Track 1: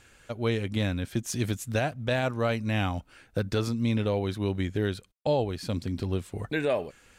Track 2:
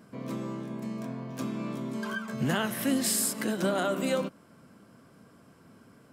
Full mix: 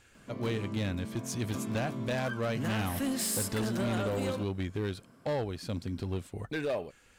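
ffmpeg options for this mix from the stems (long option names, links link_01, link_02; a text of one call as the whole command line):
ffmpeg -i stem1.wav -i stem2.wav -filter_complex "[0:a]volume=-4.5dB[link_01];[1:a]tremolo=f=0.61:d=0.3,adelay=150,volume=-3dB[link_02];[link_01][link_02]amix=inputs=2:normalize=0,asoftclip=type=hard:threshold=-27dB" out.wav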